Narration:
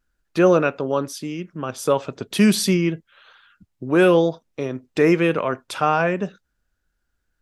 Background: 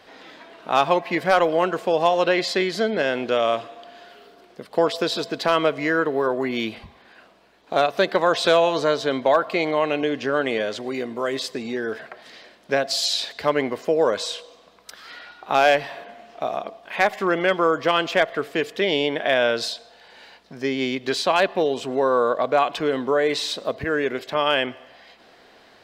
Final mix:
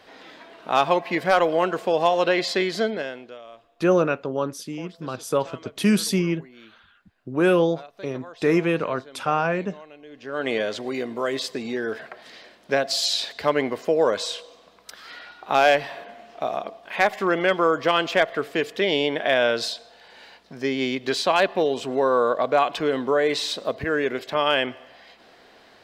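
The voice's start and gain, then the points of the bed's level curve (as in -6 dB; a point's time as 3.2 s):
3.45 s, -3.5 dB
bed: 2.85 s -1 dB
3.43 s -23 dB
10.04 s -23 dB
10.49 s -0.5 dB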